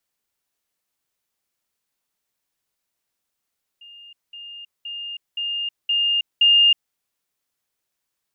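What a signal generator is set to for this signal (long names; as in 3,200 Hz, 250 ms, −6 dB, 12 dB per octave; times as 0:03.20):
level staircase 2,820 Hz −41 dBFS, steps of 6 dB, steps 6, 0.32 s 0.20 s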